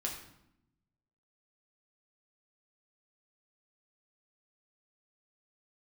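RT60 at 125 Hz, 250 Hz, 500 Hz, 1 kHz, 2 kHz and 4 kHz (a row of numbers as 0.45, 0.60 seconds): 1.4, 1.2, 0.80, 0.75, 0.70, 0.60 seconds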